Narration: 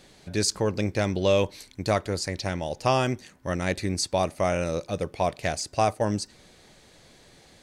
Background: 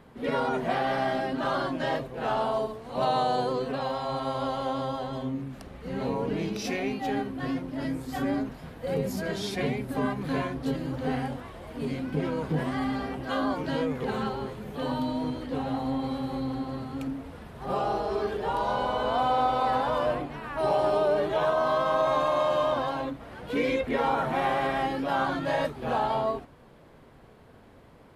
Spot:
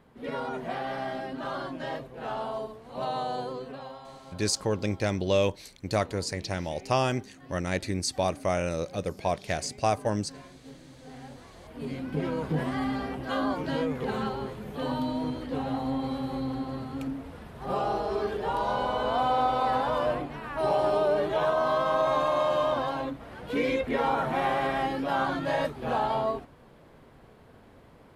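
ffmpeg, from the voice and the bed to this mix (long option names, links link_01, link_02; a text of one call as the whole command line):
ffmpeg -i stem1.wav -i stem2.wav -filter_complex "[0:a]adelay=4050,volume=-2.5dB[link_01];[1:a]volume=12dB,afade=type=out:start_time=3.38:duration=0.82:silence=0.237137,afade=type=in:start_time=11.1:duration=1.22:silence=0.125893[link_02];[link_01][link_02]amix=inputs=2:normalize=0" out.wav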